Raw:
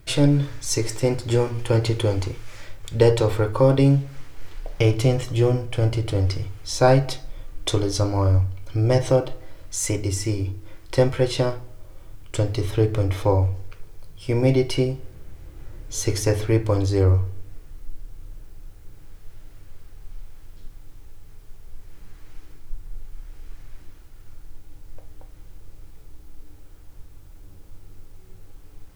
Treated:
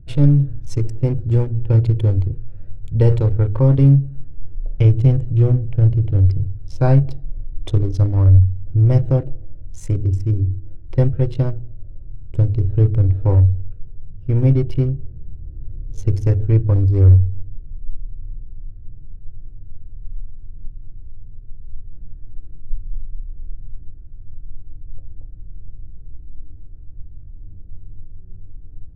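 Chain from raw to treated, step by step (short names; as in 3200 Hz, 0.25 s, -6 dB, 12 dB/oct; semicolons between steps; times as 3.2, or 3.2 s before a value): Wiener smoothing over 41 samples; tone controls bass +15 dB, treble -9 dB; gain -6 dB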